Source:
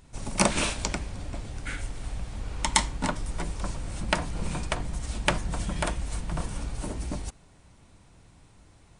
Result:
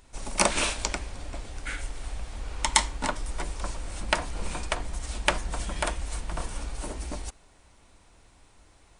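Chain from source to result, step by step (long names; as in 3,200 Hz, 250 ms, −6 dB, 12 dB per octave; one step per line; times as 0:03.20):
parametric band 140 Hz −12.5 dB 1.6 octaves
level +1.5 dB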